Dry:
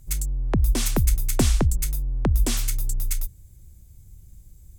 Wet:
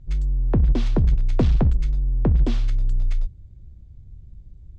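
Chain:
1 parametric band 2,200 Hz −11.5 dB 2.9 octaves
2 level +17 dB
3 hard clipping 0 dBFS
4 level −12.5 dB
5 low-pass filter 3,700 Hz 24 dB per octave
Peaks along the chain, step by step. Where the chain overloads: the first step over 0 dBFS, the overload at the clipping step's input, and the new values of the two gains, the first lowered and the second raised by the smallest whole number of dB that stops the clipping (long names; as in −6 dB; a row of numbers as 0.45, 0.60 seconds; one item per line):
−9.0, +8.0, 0.0, −12.5, −12.0 dBFS
step 2, 8.0 dB
step 2 +9 dB, step 4 −4.5 dB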